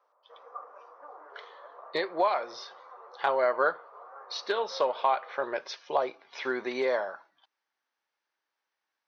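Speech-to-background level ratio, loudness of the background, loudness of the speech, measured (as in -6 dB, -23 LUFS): 19.0 dB, -49.0 LUFS, -30.0 LUFS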